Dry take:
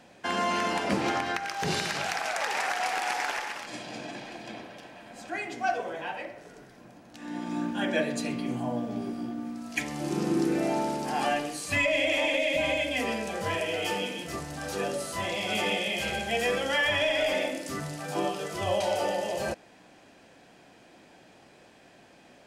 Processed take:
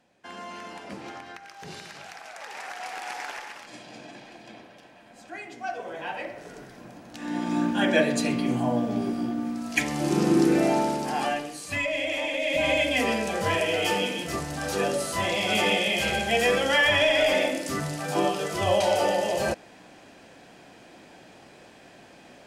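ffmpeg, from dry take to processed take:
-af "volume=4.73,afade=t=in:st=2.31:d=0.87:silence=0.446684,afade=t=in:st=5.73:d=0.79:silence=0.281838,afade=t=out:st=10.57:d=0.9:silence=0.375837,afade=t=in:st=12.35:d=0.43:silence=0.421697"

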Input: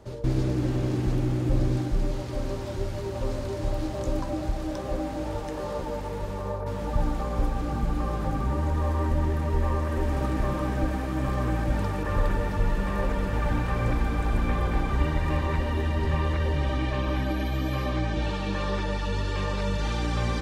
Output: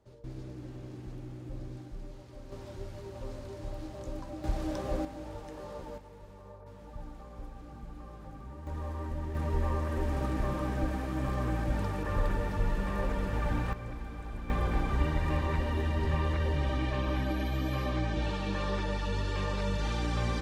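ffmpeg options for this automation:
-af "asetnsamples=n=441:p=0,asendcmd='2.52 volume volume -11.5dB;4.44 volume volume -3dB;5.05 volume volume -11dB;5.98 volume volume -18.5dB;8.67 volume volume -11.5dB;9.35 volume volume -5dB;13.73 volume volume -15dB;14.5 volume volume -4dB',volume=0.133"

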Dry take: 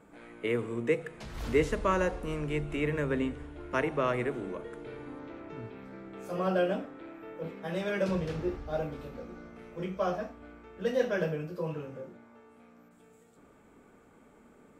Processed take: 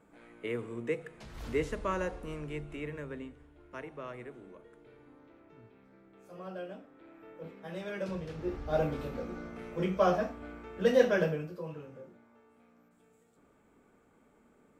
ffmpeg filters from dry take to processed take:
-af "volume=4.47,afade=t=out:st=2.25:d=1.08:silence=0.375837,afade=t=in:st=6.83:d=0.4:silence=0.446684,afade=t=in:st=8.37:d=0.47:silence=0.266073,afade=t=out:st=10.98:d=0.64:silence=0.281838"

